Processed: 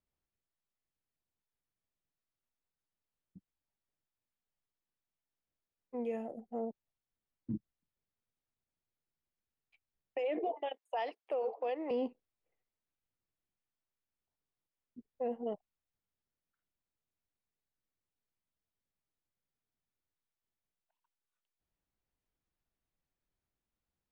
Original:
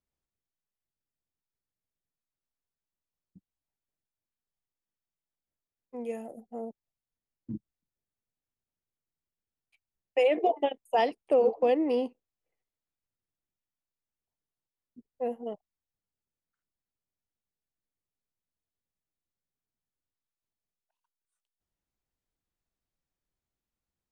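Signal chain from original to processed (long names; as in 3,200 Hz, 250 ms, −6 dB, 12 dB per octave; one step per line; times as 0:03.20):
downward compressor 3 to 1, threshold −25 dBFS, peak gain reduction 5 dB
0:10.56–0:11.91: high-pass filter 610 Hz 12 dB per octave
brickwall limiter −27.5 dBFS, peak gain reduction 10 dB
Bessel low-pass filter 3,200 Hz, order 2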